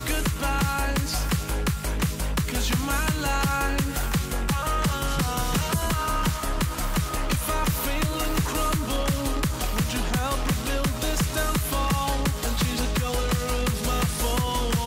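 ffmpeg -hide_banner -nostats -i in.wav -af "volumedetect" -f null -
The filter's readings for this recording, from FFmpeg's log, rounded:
mean_volume: -24.7 dB
max_volume: -14.3 dB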